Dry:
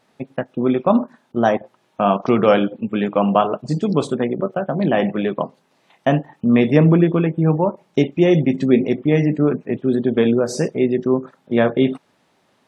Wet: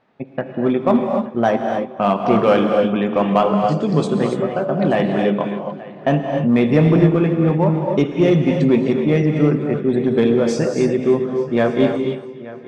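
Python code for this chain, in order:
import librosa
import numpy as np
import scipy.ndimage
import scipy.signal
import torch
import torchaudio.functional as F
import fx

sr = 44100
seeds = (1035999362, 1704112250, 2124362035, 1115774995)

p1 = fx.echo_heads(x, sr, ms=292, heads='first and third', feedback_pct=41, wet_db=-18.5)
p2 = 10.0 ** (-11.0 / 20.0) * (np.abs((p1 / 10.0 ** (-11.0 / 20.0) + 3.0) % 4.0 - 2.0) - 1.0)
p3 = p1 + (p2 * 10.0 ** (-12.0 / 20.0))
p4 = fx.env_lowpass(p3, sr, base_hz=2500.0, full_db=-9.5)
p5 = fx.rev_gated(p4, sr, seeds[0], gate_ms=310, shape='rising', drr_db=3.5)
y = p5 * 10.0 ** (-2.0 / 20.0)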